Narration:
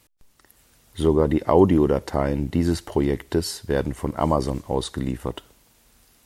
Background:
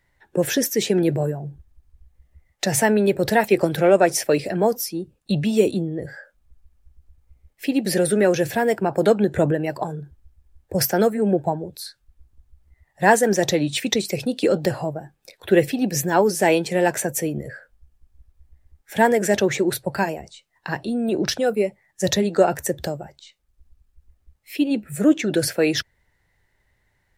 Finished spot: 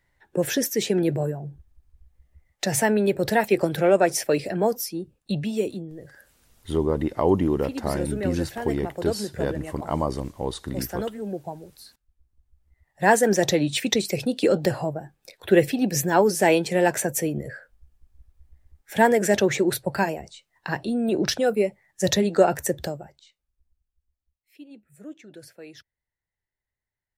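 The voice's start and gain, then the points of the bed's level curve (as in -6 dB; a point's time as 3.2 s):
5.70 s, -4.5 dB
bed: 5.18 s -3 dB
5.96 s -12 dB
12.24 s -12 dB
13.24 s -1 dB
22.74 s -1 dB
24.24 s -24 dB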